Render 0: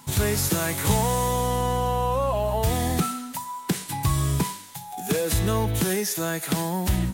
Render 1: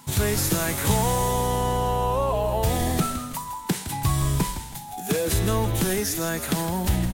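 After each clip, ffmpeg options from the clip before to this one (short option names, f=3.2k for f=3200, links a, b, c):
-filter_complex "[0:a]asplit=5[a][b][c][d][e];[b]adelay=162,afreqshift=-96,volume=-10.5dB[f];[c]adelay=324,afreqshift=-192,volume=-18.5dB[g];[d]adelay=486,afreqshift=-288,volume=-26.4dB[h];[e]adelay=648,afreqshift=-384,volume=-34.4dB[i];[a][f][g][h][i]amix=inputs=5:normalize=0"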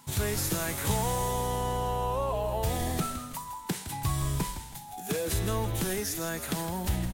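-af "equalizer=f=220:t=o:w=1.4:g=-2,volume=-6dB"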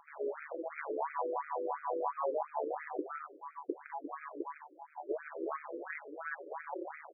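-af "tremolo=f=150:d=0.889,afftfilt=real='re*between(b*sr/1024,390*pow(1800/390,0.5+0.5*sin(2*PI*2.9*pts/sr))/1.41,390*pow(1800/390,0.5+0.5*sin(2*PI*2.9*pts/sr))*1.41)':imag='im*between(b*sr/1024,390*pow(1800/390,0.5+0.5*sin(2*PI*2.9*pts/sr))/1.41,390*pow(1800/390,0.5+0.5*sin(2*PI*2.9*pts/sr))*1.41)':win_size=1024:overlap=0.75,volume=4dB"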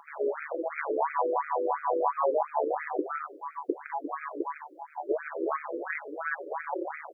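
-af "highpass=f=180:p=1,volume=8.5dB"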